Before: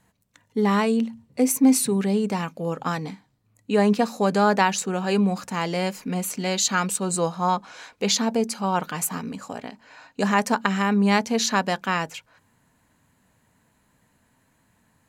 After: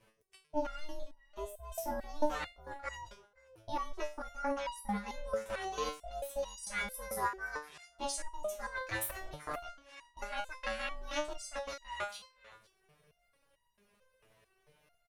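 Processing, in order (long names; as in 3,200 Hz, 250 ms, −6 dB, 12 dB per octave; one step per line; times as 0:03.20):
low-pass filter 8,200 Hz 12 dB per octave
transient designer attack +5 dB, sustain −8 dB
reversed playback
downward compressor 12 to 1, threshold −28 dBFS, peak gain reduction 19.5 dB
reversed playback
pitch shifter +5.5 semitones
ring modulation 300 Hz
on a send: single-tap delay 518 ms −23 dB
on the sum: step-sequenced resonator 4.5 Hz 110–960 Hz
level +10.5 dB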